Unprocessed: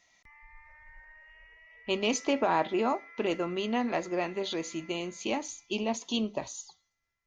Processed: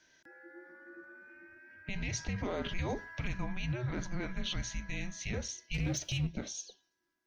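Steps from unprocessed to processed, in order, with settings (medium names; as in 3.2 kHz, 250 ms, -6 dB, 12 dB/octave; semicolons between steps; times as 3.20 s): 2.38–3.28 s: treble shelf 3.5 kHz +11.5 dB; peak limiter -26 dBFS, peak gain reduction 11.5 dB; 5.74–6.27 s: waveshaping leveller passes 1; frequency shift -370 Hz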